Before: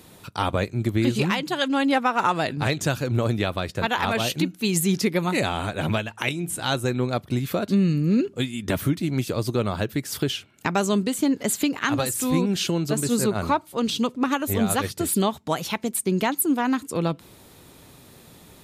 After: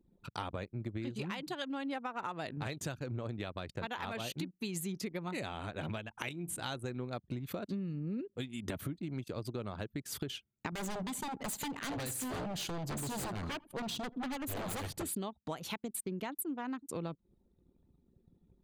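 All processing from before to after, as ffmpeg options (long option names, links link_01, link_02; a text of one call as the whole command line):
ffmpeg -i in.wav -filter_complex "[0:a]asettb=1/sr,asplit=3[link_01][link_02][link_03];[link_01]atrim=end=10.724[link_04];[link_02]atrim=start=10.72:end=15.03,asetpts=PTS-STARTPTS,afade=type=in:duration=0.004:curve=qsin,afade=type=out:start_time=4.306:duration=0.004:curve=qsin,bass=frequency=250:gain=5,treble=frequency=4000:gain=1,aeval=exprs='0.0891*(abs(mod(val(0)/0.0891+3,4)-2)-1)':channel_layout=same,aecho=1:1:85|170|255|340:0.126|0.0567|0.0255|0.0115,atrim=end_sample=190071[link_05];[link_03]atrim=start=15.026[link_06];[link_04][link_05]acrossfade=duration=0.004:curve1=hsin:curve2=qsin[link_07];[link_07][link_06]acrossfade=duration=0.004:curve1=qsin:curve2=hsin,acompressor=threshold=-30dB:ratio=5,anlmdn=0.398,bandreject=frequency=5400:width=14,volume=-6.5dB" out.wav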